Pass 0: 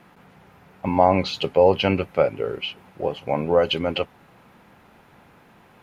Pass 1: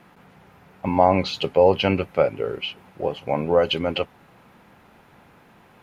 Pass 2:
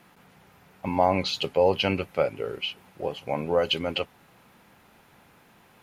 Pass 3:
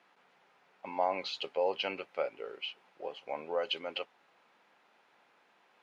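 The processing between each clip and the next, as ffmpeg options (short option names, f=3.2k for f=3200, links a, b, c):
-af anull
-af "highshelf=f=3.3k:g=10,volume=-5.5dB"
-af "highpass=440,lowpass=4.9k,volume=-8dB"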